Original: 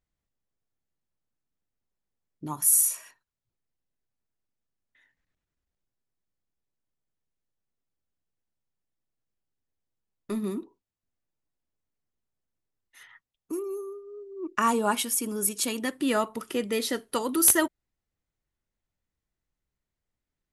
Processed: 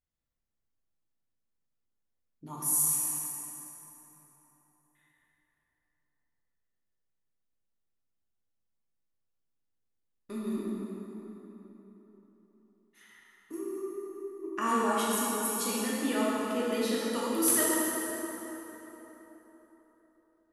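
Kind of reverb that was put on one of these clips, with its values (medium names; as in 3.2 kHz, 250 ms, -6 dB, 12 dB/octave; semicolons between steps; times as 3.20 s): plate-style reverb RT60 4 s, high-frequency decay 0.6×, DRR -7 dB; trim -10.5 dB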